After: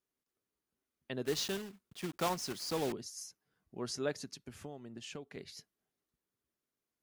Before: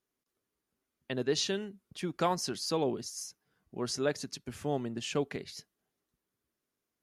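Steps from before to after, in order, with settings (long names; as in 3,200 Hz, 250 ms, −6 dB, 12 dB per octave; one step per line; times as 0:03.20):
0:01.25–0:02.94: one scale factor per block 3 bits
0:04.32–0:05.37: downward compressor 8 to 1, threshold −38 dBFS, peak gain reduction 12.5 dB
level −5 dB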